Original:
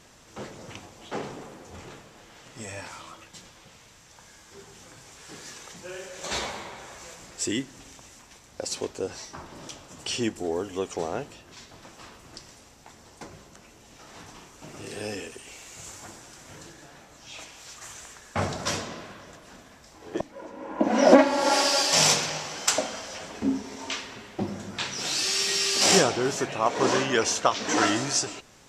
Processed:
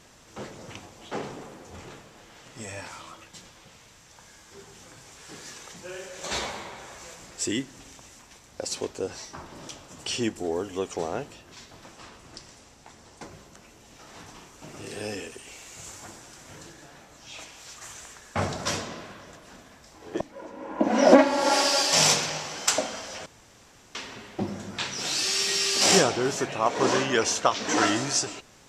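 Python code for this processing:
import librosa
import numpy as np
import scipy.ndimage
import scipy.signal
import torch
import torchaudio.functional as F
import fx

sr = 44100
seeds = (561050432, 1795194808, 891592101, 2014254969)

y = fx.lowpass(x, sr, hz=11000.0, slope=12, at=(11.93, 13.23))
y = fx.edit(y, sr, fx.room_tone_fill(start_s=23.26, length_s=0.69), tone=tone)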